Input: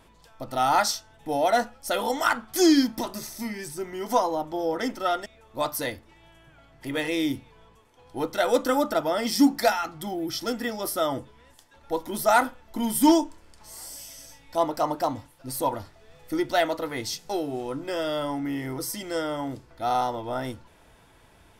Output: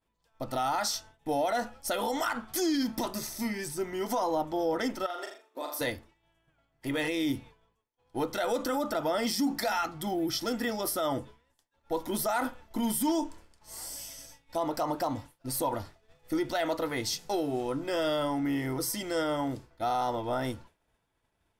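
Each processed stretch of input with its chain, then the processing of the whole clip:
5.06–5.81 compressor 12:1, threshold -33 dBFS + brick-wall FIR high-pass 250 Hz + flutter echo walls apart 7 m, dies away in 0.53 s
whole clip: expander -42 dBFS; limiter -21 dBFS

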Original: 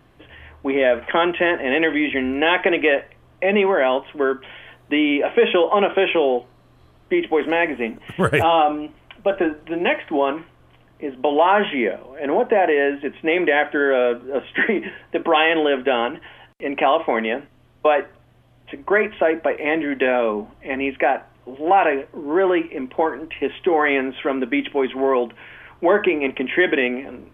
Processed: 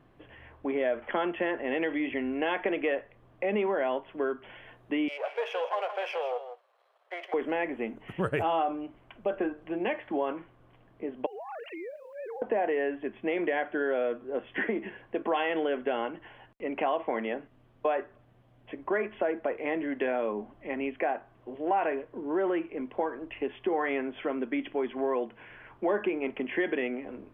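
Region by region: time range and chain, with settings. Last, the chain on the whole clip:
5.08–7.34 half-wave gain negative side -7 dB + steep high-pass 490 Hz 48 dB/oct + echo 0.162 s -11.5 dB
11.26–12.42 sine-wave speech + compressor 16:1, threshold -30 dBFS + requantised 10-bit, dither none
whole clip: high shelf 2700 Hz -11.5 dB; compressor 1.5:1, threshold -29 dBFS; bell 63 Hz -8.5 dB 0.96 oct; gain -5 dB

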